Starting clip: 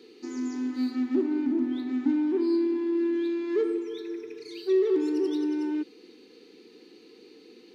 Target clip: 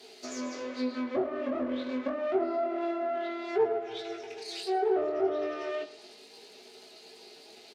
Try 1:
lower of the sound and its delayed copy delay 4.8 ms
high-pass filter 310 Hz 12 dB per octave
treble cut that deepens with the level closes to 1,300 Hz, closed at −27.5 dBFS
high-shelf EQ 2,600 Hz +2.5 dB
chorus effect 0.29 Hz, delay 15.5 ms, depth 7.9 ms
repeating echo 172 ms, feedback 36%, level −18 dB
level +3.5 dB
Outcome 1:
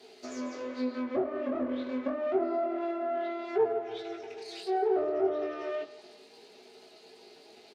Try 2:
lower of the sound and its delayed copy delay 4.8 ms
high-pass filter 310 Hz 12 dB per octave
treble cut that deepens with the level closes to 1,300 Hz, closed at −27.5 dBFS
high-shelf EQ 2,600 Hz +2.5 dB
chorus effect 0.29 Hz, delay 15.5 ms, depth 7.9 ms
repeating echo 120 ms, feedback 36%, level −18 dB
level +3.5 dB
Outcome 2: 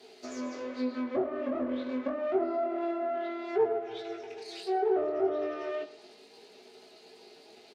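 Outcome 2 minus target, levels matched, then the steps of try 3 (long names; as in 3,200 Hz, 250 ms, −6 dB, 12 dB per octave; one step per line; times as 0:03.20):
4,000 Hz band −5.0 dB
lower of the sound and its delayed copy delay 4.8 ms
high-pass filter 310 Hz 12 dB per octave
treble cut that deepens with the level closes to 1,300 Hz, closed at −27.5 dBFS
high-shelf EQ 2,600 Hz +10 dB
chorus effect 0.29 Hz, delay 15.5 ms, depth 7.9 ms
repeating echo 120 ms, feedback 36%, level −18 dB
level +3.5 dB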